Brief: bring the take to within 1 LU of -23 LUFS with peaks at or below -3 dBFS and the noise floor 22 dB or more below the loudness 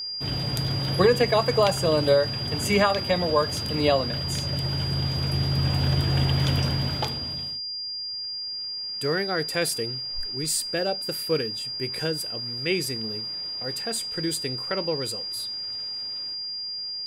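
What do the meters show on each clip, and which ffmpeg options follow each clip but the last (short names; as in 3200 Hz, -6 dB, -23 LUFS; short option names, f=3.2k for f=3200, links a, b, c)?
steady tone 4800 Hz; tone level -30 dBFS; loudness -25.5 LUFS; peak -7.5 dBFS; loudness target -23.0 LUFS
-> -af "bandreject=f=4.8k:w=30"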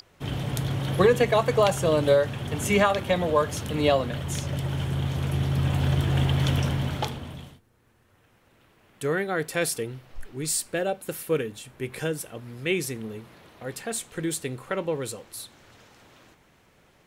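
steady tone none; loudness -26.0 LUFS; peak -8.0 dBFS; loudness target -23.0 LUFS
-> -af "volume=3dB"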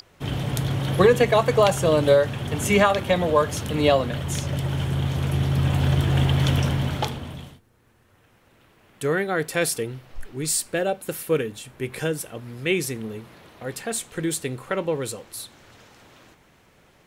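loudness -23.0 LUFS; peak -5.0 dBFS; noise floor -58 dBFS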